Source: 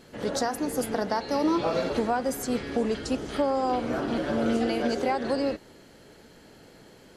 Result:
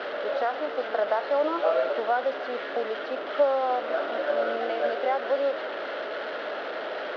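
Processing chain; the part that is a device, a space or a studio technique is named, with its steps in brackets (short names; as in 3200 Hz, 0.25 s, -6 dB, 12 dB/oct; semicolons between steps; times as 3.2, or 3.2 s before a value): digital answering machine (BPF 320–3400 Hz; delta modulation 32 kbps, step -27.5 dBFS; speaker cabinet 450–3300 Hz, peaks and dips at 610 Hz +10 dB, 950 Hz -3 dB, 1400 Hz +6 dB, 2400 Hz -6 dB)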